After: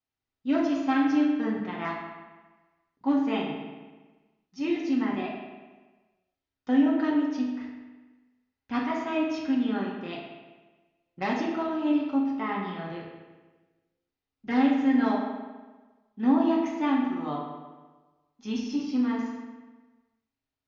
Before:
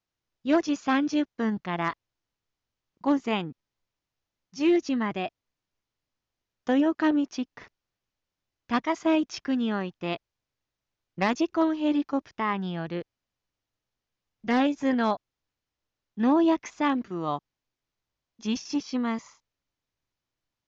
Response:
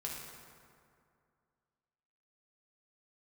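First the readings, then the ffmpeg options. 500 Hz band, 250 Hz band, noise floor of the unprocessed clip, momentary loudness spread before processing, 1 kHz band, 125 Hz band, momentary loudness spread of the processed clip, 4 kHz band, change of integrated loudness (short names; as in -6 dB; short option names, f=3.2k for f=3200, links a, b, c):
-3.5 dB, +1.0 dB, under -85 dBFS, 12 LU, -2.0 dB, -4.5 dB, 18 LU, -4.0 dB, 0.0 dB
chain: -filter_complex "[0:a]lowpass=5.4k[a];[1:a]atrim=start_sample=2205,asetrate=79380,aresample=44100[b];[a][b]afir=irnorm=-1:irlink=0,volume=2dB"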